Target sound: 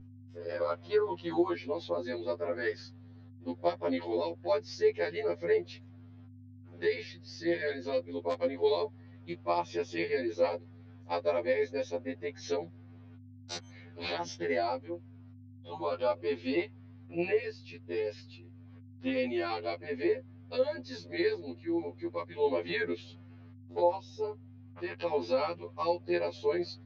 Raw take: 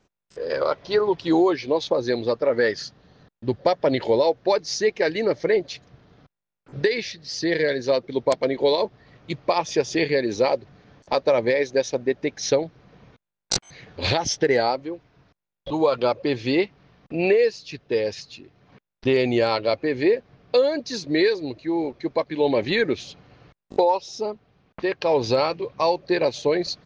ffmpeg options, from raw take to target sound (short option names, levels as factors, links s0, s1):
-af "highpass=230,lowpass=3700,aeval=exprs='val(0)+0.02*(sin(2*PI*50*n/s)+sin(2*PI*2*50*n/s)/2+sin(2*PI*3*50*n/s)/3+sin(2*PI*4*50*n/s)/4+sin(2*PI*5*50*n/s)/5)':c=same,afftfilt=real='re*2*eq(mod(b,4),0)':imag='im*2*eq(mod(b,4),0)':win_size=2048:overlap=0.75,volume=0.422"